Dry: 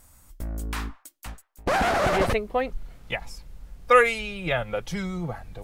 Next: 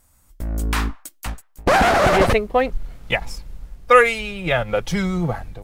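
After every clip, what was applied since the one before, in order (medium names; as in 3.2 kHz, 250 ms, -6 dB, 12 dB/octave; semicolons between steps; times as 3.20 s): level rider gain up to 10 dB; in parallel at -3 dB: hysteresis with a dead band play -32 dBFS; on the sum: trim -4.5 dB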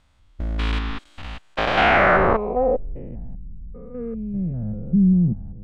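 spectrogram pixelated in time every 200 ms; low-pass sweep 3.4 kHz -> 200 Hz, 1.74–3.30 s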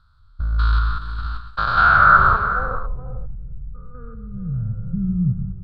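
FFT filter 140 Hz 0 dB, 240 Hz -20 dB, 500 Hz -18 dB, 780 Hz -17 dB, 1.4 kHz +9 dB, 2 kHz -25 dB, 2.8 kHz -21 dB, 4.3 kHz +2 dB, 6.2 kHz -22 dB, 10 kHz -14 dB; on a send: multi-tap echo 126/180/424/497 ms -10.5/-15.5/-12.5/-16 dB; on the sum: trim +4 dB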